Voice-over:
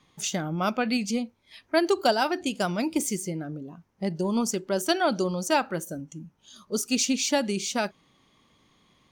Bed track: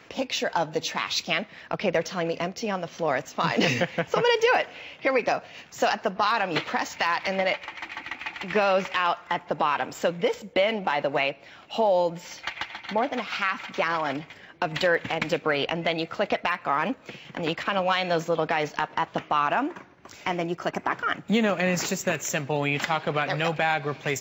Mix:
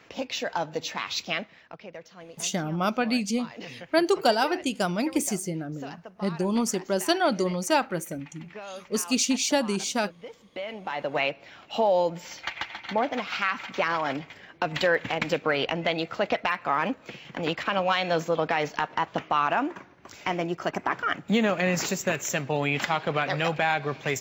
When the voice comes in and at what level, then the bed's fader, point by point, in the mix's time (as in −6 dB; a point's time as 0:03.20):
2.20 s, +0.5 dB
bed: 0:01.41 −3.5 dB
0:01.85 −18 dB
0:10.34 −18 dB
0:11.25 −0.5 dB